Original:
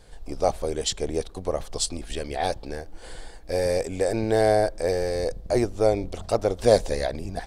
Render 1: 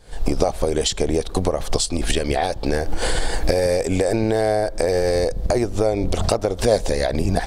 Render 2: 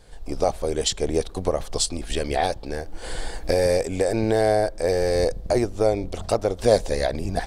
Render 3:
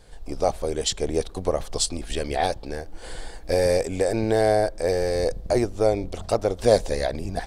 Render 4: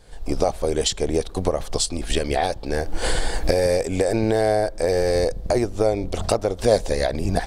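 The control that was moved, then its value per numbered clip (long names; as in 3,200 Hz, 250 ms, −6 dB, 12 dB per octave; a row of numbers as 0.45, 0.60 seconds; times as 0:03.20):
camcorder AGC, rising by: 86, 13, 5.4, 34 dB per second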